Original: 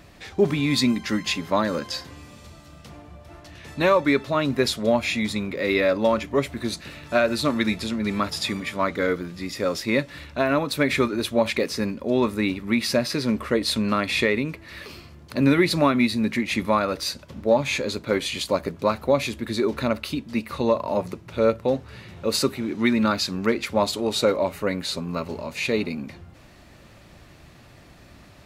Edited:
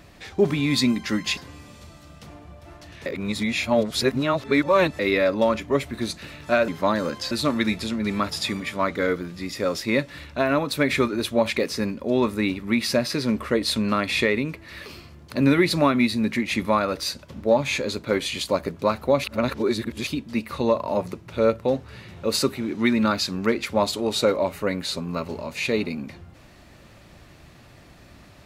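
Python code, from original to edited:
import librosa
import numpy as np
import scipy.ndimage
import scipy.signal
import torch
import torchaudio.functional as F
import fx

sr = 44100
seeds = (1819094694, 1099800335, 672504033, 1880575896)

y = fx.edit(x, sr, fx.move(start_s=1.37, length_s=0.63, to_s=7.31),
    fx.reverse_span(start_s=3.69, length_s=1.93),
    fx.reverse_span(start_s=19.24, length_s=0.83), tone=tone)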